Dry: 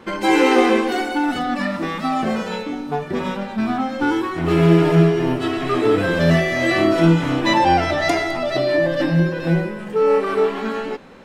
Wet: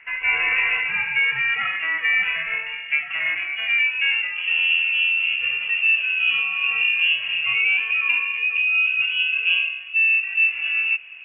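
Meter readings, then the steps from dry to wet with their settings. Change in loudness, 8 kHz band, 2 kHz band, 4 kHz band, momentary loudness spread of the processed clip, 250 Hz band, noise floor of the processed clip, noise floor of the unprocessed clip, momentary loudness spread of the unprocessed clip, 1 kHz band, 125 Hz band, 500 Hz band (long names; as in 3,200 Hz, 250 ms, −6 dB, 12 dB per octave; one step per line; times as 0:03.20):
0.0 dB, below −40 dB, +7.5 dB, +5.0 dB, 5 LU, below −35 dB, −34 dBFS, −31 dBFS, 10 LU, −16.5 dB, below −30 dB, below −30 dB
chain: band-pass filter sweep 1,000 Hz → 500 Hz, 0:03.26–0:04.65
speech leveller within 5 dB 0.5 s
voice inversion scrambler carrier 3,100 Hz
level +3.5 dB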